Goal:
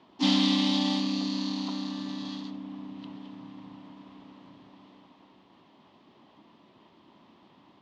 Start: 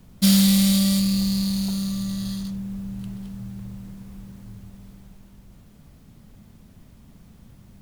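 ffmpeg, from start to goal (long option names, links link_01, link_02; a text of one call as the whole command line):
ffmpeg -i in.wav -filter_complex "[0:a]asplit=3[link_01][link_02][link_03];[link_02]asetrate=58866,aresample=44100,atempo=0.749154,volume=-4dB[link_04];[link_03]asetrate=66075,aresample=44100,atempo=0.66742,volume=-4dB[link_05];[link_01][link_04][link_05]amix=inputs=3:normalize=0,highpass=430,equalizer=frequency=480:width_type=q:width=4:gain=-5,equalizer=frequency=1000:width_type=q:width=4:gain=8,equalizer=frequency=1500:width_type=q:width=4:gain=-9,equalizer=frequency=2300:width_type=q:width=4:gain=-4,equalizer=frequency=3200:width_type=q:width=4:gain=3,lowpass=frequency=3800:width=0.5412,lowpass=frequency=3800:width=1.3066" out.wav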